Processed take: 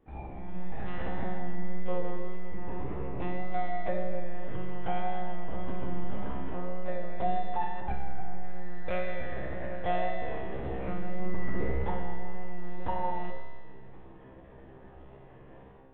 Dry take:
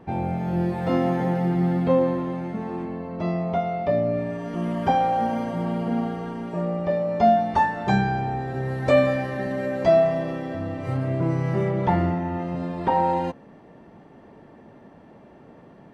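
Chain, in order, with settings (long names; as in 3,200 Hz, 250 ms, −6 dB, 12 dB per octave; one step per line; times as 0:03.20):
on a send at −21.5 dB: convolution reverb RT60 0.40 s, pre-delay 117 ms
on the sum: automatic gain control gain up to 13 dB
0:00.49–0:01.18: healed spectral selection 230–1,300 Hz both
one-pitch LPC vocoder at 8 kHz 180 Hz
tuned comb filter 66 Hz, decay 1.8 s, harmonics all, mix 90%
pitch vibrato 1.8 Hz 19 cents
hum removal 53.46 Hz, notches 19
in parallel at −1 dB: brickwall limiter −22 dBFS, peak gain reduction 10.5 dB
0:07.80–0:08.44: on the sum: high-frequency loss of the air 390 metres
level −6 dB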